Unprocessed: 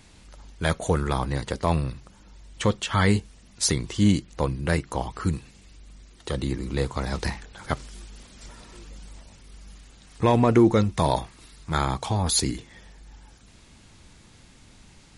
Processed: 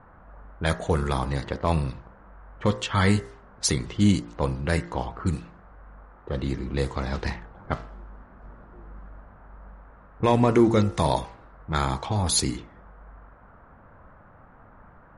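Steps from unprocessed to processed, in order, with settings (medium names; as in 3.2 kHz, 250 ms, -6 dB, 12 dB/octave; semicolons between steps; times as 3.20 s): de-hum 57.44 Hz, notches 36; level-controlled noise filter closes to 370 Hz, open at -20.5 dBFS; band noise 450–1500 Hz -55 dBFS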